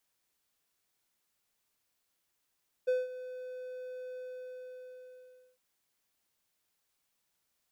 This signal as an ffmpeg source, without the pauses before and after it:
-f lavfi -i "aevalsrc='0.075*(1-4*abs(mod(506*t+0.25,1)-0.5))':d=2.71:s=44100,afade=t=in:d=0.016,afade=t=out:st=0.016:d=0.187:silence=0.168,afade=t=out:st=1.3:d=1.41"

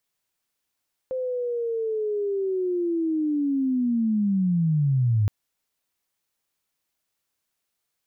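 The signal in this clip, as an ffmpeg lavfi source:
-f lavfi -i "aevalsrc='pow(10,(-25+7.5*t/4.17)/20)*sin(2*PI*(520*t-420*t*t/(2*4.17)))':d=4.17:s=44100"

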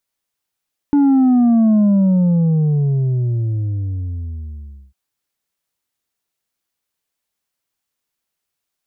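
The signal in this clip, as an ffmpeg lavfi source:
-f lavfi -i "aevalsrc='0.316*clip((4-t)/3.2,0,1)*tanh(1.58*sin(2*PI*290*4/log(65/290)*(exp(log(65/290)*t/4)-1)))/tanh(1.58)':d=4:s=44100"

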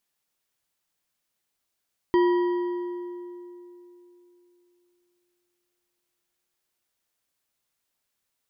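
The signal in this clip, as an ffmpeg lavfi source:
-f lavfi -i "aevalsrc='0.158*pow(10,-3*t/3.32)*sin(2*PI*353*t)+0.0596*pow(10,-3*t/2.449)*sin(2*PI*973.2*t)+0.0224*pow(10,-3*t/2.001)*sin(2*PI*1907.6*t)+0.00841*pow(10,-3*t/1.721)*sin(2*PI*3153.3*t)+0.00316*pow(10,-3*t/1.526)*sin(2*PI*4709*t)':d=5.62:s=44100"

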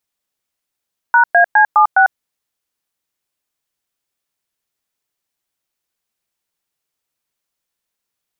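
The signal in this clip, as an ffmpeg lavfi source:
-f lavfi -i "aevalsrc='0.355*clip(min(mod(t,0.206),0.098-mod(t,0.206))/0.002,0,1)*(eq(floor(t/0.206),0)*(sin(2*PI*941*mod(t,0.206))+sin(2*PI*1477*mod(t,0.206)))+eq(floor(t/0.206),1)*(sin(2*PI*697*mod(t,0.206))+sin(2*PI*1633*mod(t,0.206)))+eq(floor(t/0.206),2)*(sin(2*PI*852*mod(t,0.206))+sin(2*PI*1633*mod(t,0.206)))+eq(floor(t/0.206),3)*(sin(2*PI*852*mod(t,0.206))+sin(2*PI*1209*mod(t,0.206)))+eq(floor(t/0.206),4)*(sin(2*PI*770*mod(t,0.206))+sin(2*PI*1477*mod(t,0.206))))':d=1.03:s=44100"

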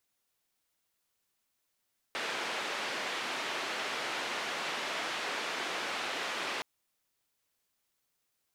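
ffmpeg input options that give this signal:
-f lavfi -i "anoisesrc=c=white:d=4.47:r=44100:seed=1,highpass=f=320,lowpass=f=2800,volume=-22.1dB"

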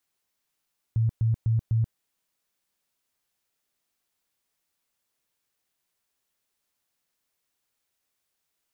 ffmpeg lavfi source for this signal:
-f lavfi -i "aevalsrc='0.106*sin(2*PI*113*mod(t,0.25))*lt(mod(t,0.25),15/113)':d=1:s=44100"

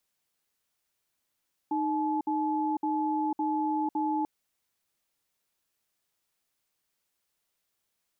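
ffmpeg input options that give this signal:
-f lavfi -i "aevalsrc='0.0376*(sin(2*PI*308*t)+sin(2*PI*859*t))*clip(min(mod(t,0.56),0.5-mod(t,0.56))/0.005,0,1)':d=2.54:s=44100"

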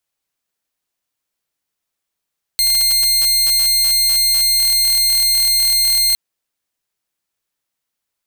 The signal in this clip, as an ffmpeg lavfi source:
-f lavfi -i "aevalsrc='0.335*(2*mod(4200*t,1)-1)':d=3.56:s=44100"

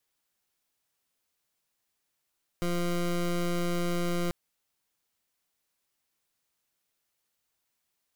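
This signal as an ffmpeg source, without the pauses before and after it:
-f lavfi -i "aevalsrc='0.0376*(2*lt(mod(174*t,1),0.2)-1)':d=1.69:s=44100"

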